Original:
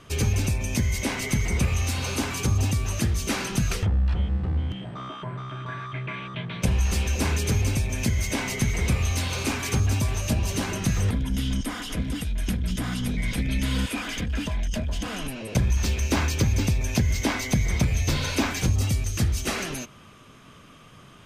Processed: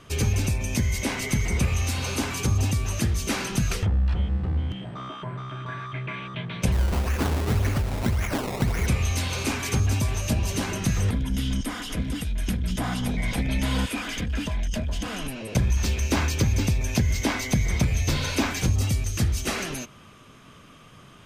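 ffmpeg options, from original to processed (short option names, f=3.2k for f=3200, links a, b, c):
-filter_complex "[0:a]asettb=1/sr,asplit=3[a][b][c];[a]atrim=end=6.724[d];[b]atrim=start=6.72:end=8.87,asetpts=PTS-STARTPTS,afade=t=in:d=0.004:c=qsin,afade=t=out:st=2.146:d=0.004:c=qsin,acrusher=samples=20:mix=1:aa=0.000001:lfo=1:lforange=20:lforate=1.8[e];[c]atrim=start=8.866[f];[d][e]acrossfade=d=0.004:c1=hsin:c2=qsin[g];[g][f]acrossfade=d=0.004:c1=qsin:c2=hsin,asettb=1/sr,asplit=3[h][i][j];[h]atrim=end=12.774[k];[i]atrim=start=12.77:end=13.85,asetpts=PTS-STARTPTS,afade=t=in:d=0.004:c=qsin,afade=t=out:st=1.076:d=0.004:c=qsin,equalizer=f=780:t=o:w=1:g=9.5[l];[j]atrim=start=13.846[m];[k][l]acrossfade=d=0.004:c1=hsin:c2=qsin[n];[n][m]acrossfade=d=0.004:c1=qsin:c2=hsin"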